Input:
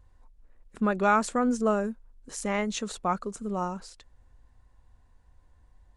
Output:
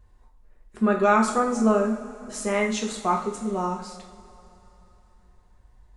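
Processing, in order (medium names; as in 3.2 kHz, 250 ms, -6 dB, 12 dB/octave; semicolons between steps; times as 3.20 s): two-slope reverb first 0.47 s, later 3.3 s, from -18 dB, DRR -1.5 dB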